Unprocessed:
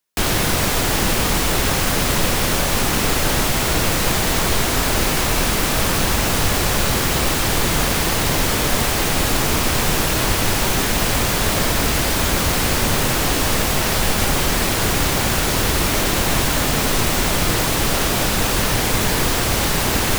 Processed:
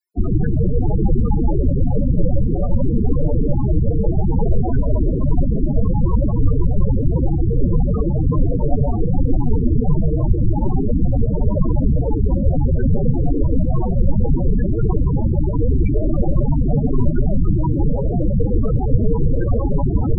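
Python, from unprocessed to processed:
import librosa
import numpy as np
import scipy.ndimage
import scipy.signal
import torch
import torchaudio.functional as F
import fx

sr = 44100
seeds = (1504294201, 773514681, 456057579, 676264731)

y = fx.rev_gated(x, sr, seeds[0], gate_ms=200, shape='rising', drr_db=6.5)
y = fx.spec_topn(y, sr, count=8)
y = y * librosa.db_to_amplitude(6.5)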